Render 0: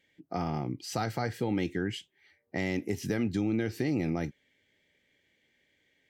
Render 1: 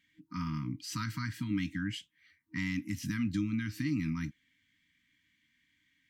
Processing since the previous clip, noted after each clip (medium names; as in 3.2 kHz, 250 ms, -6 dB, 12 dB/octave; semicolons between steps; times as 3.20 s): FFT band-reject 320–930 Hz; trim -1.5 dB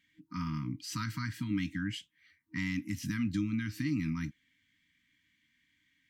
no audible change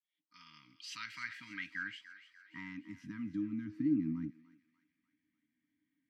fade-in on the opening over 0.89 s; band-pass sweep 3.5 kHz -> 330 Hz, 0.66–3.84 s; thinning echo 295 ms, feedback 57%, high-pass 1 kHz, level -13.5 dB; trim +4.5 dB